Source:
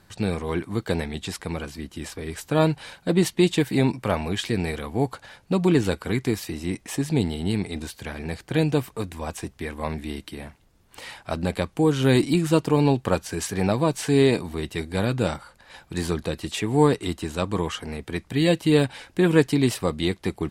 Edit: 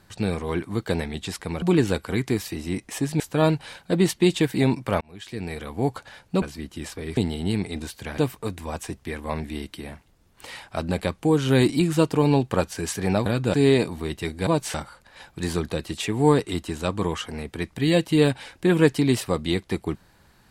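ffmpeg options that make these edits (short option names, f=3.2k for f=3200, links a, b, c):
-filter_complex "[0:a]asplit=11[a][b][c][d][e][f][g][h][i][j][k];[a]atrim=end=1.622[l];[b]atrim=start=5.588:end=7.172[m];[c]atrim=start=2.368:end=4.18,asetpts=PTS-STARTPTS,afade=t=out:st=1.808:d=0.004:c=hsin[n];[d]atrim=start=4.18:end=5.592,asetpts=PTS-STARTPTS,afade=t=in:d=0.88[o];[e]atrim=start=1.618:end=2.372[p];[f]atrim=start=7.168:end=8.182[q];[g]atrim=start=8.718:end=13.802[r];[h]atrim=start=14.998:end=15.282[s];[i]atrim=start=14.068:end=15.002[t];[j]atrim=start=13.798:end=14.072[u];[k]atrim=start=15.278[v];[l][m]acrossfade=d=0.004:c1=hsin:c2=hsin[w];[n][o]concat=n=2:v=0:a=1[x];[w][x]acrossfade=d=0.004:c1=hsin:c2=hsin[y];[y][p]acrossfade=d=0.004:c1=hsin:c2=hsin[z];[z][q]acrossfade=d=0.004:c1=hsin:c2=hsin[aa];[aa][r]acrossfade=d=0.004:c1=hsin:c2=hsin[ab];[ab][s]acrossfade=d=0.004:c1=hsin:c2=hsin[ac];[ac][t]acrossfade=d=0.004:c1=hsin:c2=hsin[ad];[ad][u]acrossfade=d=0.004:c1=hsin:c2=hsin[ae];[ae][v]acrossfade=d=0.004:c1=hsin:c2=hsin"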